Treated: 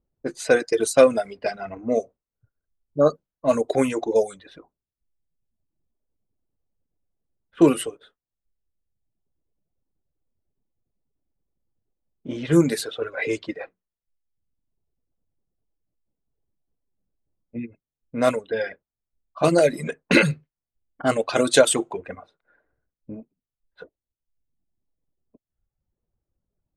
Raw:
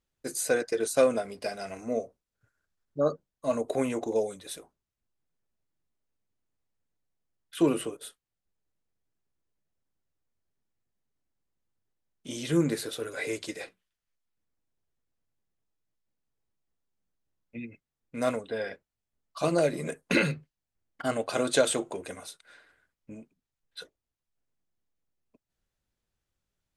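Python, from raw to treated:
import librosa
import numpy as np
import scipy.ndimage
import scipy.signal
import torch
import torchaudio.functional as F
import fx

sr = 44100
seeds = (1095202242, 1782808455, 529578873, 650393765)

y = fx.env_lowpass(x, sr, base_hz=610.0, full_db=-24.0)
y = fx.dereverb_blind(y, sr, rt60_s=1.1)
y = y * 10.0 ** (8.5 / 20.0)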